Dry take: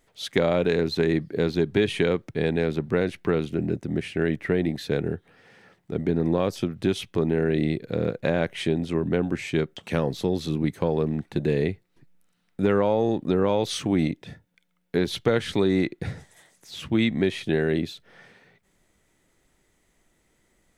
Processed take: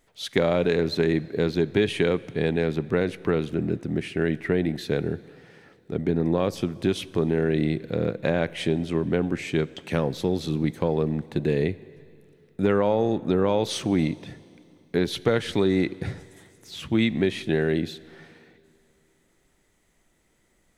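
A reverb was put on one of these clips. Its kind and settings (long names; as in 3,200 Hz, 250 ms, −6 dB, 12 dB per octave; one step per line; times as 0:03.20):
dense smooth reverb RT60 2.7 s, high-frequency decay 0.95×, DRR 18.5 dB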